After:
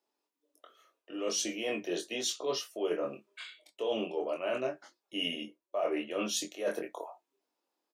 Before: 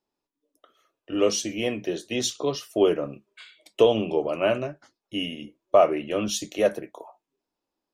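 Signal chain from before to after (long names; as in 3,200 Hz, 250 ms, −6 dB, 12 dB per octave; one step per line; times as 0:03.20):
high-pass filter 340 Hz 12 dB per octave
reversed playback
downward compressor 10 to 1, threshold −31 dBFS, peak gain reduction 19 dB
reversed playback
double-tracking delay 23 ms −4.5 dB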